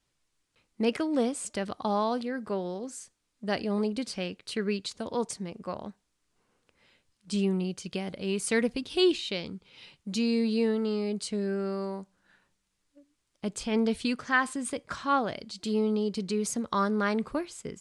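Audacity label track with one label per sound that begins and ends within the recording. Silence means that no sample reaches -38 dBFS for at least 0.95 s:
7.300000	12.030000	sound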